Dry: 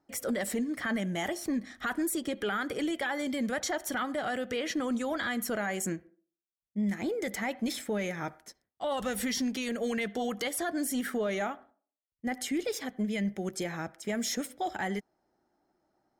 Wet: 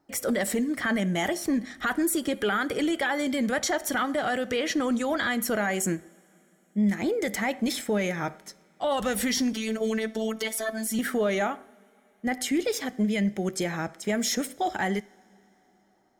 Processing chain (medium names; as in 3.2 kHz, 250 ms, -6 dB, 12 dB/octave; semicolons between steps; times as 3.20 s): 9.53–10.99 s: robot voice 221 Hz; two-slope reverb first 0.43 s, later 3.9 s, from -18 dB, DRR 18 dB; trim +5.5 dB